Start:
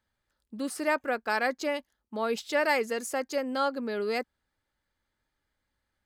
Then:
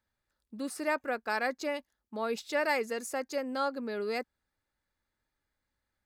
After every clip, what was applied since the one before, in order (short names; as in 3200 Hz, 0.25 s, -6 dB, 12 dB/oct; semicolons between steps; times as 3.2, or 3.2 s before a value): notch 3100 Hz, Q 12; gain -3.5 dB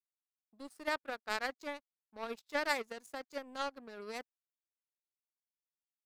power-law curve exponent 2; gain +1.5 dB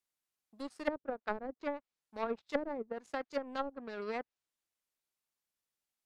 treble ducked by the level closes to 390 Hz, closed at -33.5 dBFS; gain +6 dB